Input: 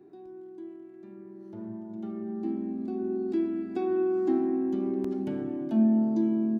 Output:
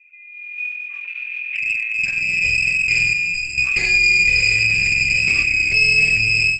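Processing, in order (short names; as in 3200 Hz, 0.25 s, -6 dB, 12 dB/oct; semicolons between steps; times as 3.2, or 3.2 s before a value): inverted band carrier 2800 Hz; high shelf 2000 Hz -6 dB; spectral gate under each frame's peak -25 dB strong; air absorption 100 m; diffused feedback echo 0.947 s, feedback 50%, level -11 dB; one-sided clip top -38 dBFS, bottom -20 dBFS; notches 60/120/180 Hz; 3.13–3.58 resonator 84 Hz, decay 0.19 s, harmonics all, mix 100%; AGC gain up to 15 dB; maximiser +13.5 dB; gain -7 dB; Opus 12 kbps 48000 Hz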